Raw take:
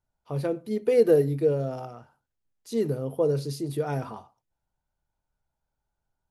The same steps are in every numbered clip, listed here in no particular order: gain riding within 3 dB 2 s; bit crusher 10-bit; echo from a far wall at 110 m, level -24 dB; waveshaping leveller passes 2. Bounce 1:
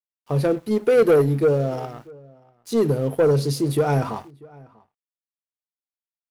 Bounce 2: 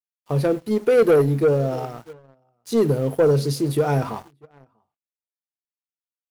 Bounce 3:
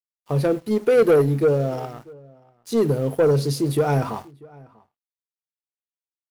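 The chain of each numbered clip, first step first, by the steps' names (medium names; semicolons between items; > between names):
gain riding > waveshaping leveller > bit crusher > echo from a far wall; bit crusher > echo from a far wall > waveshaping leveller > gain riding; bit crusher > gain riding > waveshaping leveller > echo from a far wall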